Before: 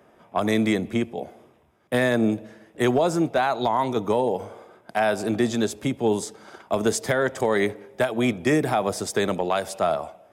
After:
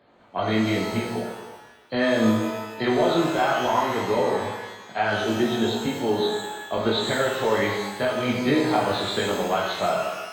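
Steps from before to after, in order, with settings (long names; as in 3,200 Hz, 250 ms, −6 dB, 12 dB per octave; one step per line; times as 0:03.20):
hearing-aid frequency compression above 3,100 Hz 4 to 1
multi-voice chorus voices 4, 0.75 Hz, delay 19 ms, depth 2.8 ms
reverb with rising layers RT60 1.1 s, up +12 semitones, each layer −8 dB, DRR 0 dB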